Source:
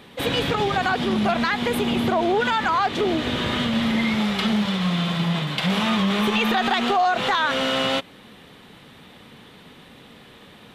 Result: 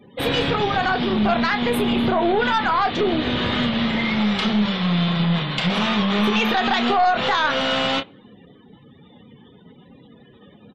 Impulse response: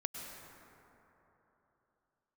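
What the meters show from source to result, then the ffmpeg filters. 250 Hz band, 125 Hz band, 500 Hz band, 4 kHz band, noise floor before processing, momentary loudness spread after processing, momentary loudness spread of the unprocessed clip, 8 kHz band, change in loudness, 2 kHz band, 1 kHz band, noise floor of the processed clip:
+1.5 dB, +2.0 dB, +1.5 dB, +1.5 dB, -48 dBFS, 3 LU, 3 LU, -3.5 dB, +1.5 dB, +1.5 dB, +1.5 dB, -50 dBFS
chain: -filter_complex "[0:a]asplit=2[s0][s1];[s1]adelay=29,volume=0.398[s2];[s0][s2]amix=inputs=2:normalize=0,aeval=exprs='0.355*(cos(1*acos(clip(val(0)/0.355,-1,1)))-cos(1*PI/2))+0.0794*(cos(2*acos(clip(val(0)/0.355,-1,1)))-cos(2*PI/2))+0.0158*(cos(4*acos(clip(val(0)/0.355,-1,1)))-cos(4*PI/2))+0.0178*(cos(5*acos(clip(val(0)/0.355,-1,1)))-cos(5*PI/2))+0.00891*(cos(6*acos(clip(val(0)/0.355,-1,1)))-cos(6*PI/2))':c=same,afftdn=nr=35:nf=-41"

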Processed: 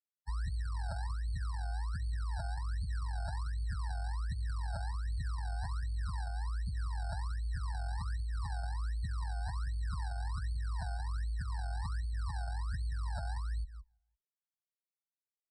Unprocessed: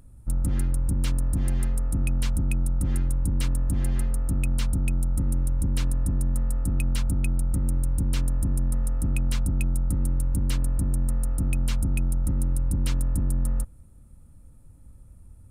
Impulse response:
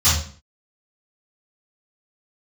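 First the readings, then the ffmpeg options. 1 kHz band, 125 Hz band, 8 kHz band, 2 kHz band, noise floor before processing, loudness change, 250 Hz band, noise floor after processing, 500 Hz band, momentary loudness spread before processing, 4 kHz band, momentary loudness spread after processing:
+2.0 dB, -11.5 dB, -20.0 dB, -5.0 dB, -49 dBFS, -12.0 dB, -25.0 dB, under -85 dBFS, -12.0 dB, 1 LU, -9.5 dB, 1 LU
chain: -filter_complex "[0:a]bass=f=250:g=-1,treble=f=4000:g=10,afftfilt=real='re*gte(hypot(re,im),0.398)':imag='im*gte(hypot(re,im),0.398)':win_size=1024:overlap=0.75,asplit=2[s0][s1];[s1]aecho=0:1:170|340|510:0.224|0.0694|0.0215[s2];[s0][s2]amix=inputs=2:normalize=0,afftdn=nr=22:nf=-25,equalizer=f=3800:t=o:w=2.5:g=-7,acrusher=samples=40:mix=1:aa=0.000001:lfo=1:lforange=40:lforate=1.3,acrossover=split=390|3000[s3][s4][s5];[s3]acompressor=threshold=0.01:ratio=2[s6];[s6][s4][s5]amix=inputs=3:normalize=0,afreqshift=13,aresample=22050,aresample=44100,alimiter=level_in=1.88:limit=0.0631:level=0:latency=1:release=86,volume=0.531,afftfilt=real='re*eq(mod(floor(b*sr/1024/1900),2),0)':imag='im*eq(mod(floor(b*sr/1024/1900),2),0)':win_size=1024:overlap=0.75"

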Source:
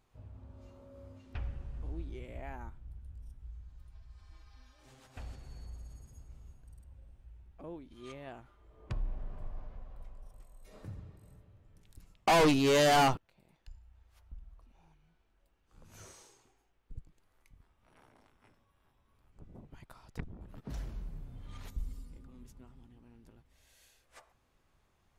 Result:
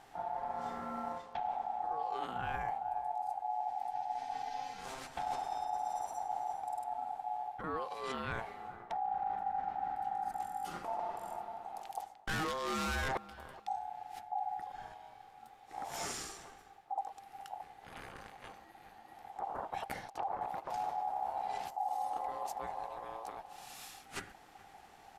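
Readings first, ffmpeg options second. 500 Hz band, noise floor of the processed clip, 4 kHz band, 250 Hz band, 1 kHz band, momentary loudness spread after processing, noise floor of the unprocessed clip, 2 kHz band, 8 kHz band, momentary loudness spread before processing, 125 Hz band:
-7.5 dB, -59 dBFS, -7.0 dB, -10.0 dB, +3.5 dB, 14 LU, -73 dBFS, -2.5 dB, -2.5 dB, 26 LU, -9.5 dB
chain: -filter_complex "[0:a]aeval=exprs='(tanh(28.2*val(0)+0.25)-tanh(0.25))/28.2':c=same,areverse,acompressor=threshold=0.00355:ratio=16,areverse,equalizer=f=180:w=1.8:g=-5.5,asplit=2[s0][s1];[s1]adelay=424,lowpass=f=890:p=1,volume=0.15,asplit=2[s2][s3];[s3]adelay=424,lowpass=f=890:p=1,volume=0.24[s4];[s0][s2][s4]amix=inputs=3:normalize=0,aeval=exprs='val(0)*sin(2*PI*790*n/s)':c=same,aresample=32000,aresample=44100,volume=7.94"

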